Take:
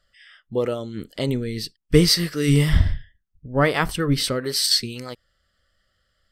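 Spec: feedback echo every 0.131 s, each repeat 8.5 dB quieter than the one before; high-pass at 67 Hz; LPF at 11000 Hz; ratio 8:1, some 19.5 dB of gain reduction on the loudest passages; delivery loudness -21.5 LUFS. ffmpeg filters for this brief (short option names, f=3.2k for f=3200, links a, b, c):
-af "highpass=67,lowpass=11k,acompressor=threshold=-30dB:ratio=8,aecho=1:1:131|262|393|524:0.376|0.143|0.0543|0.0206,volume=12.5dB"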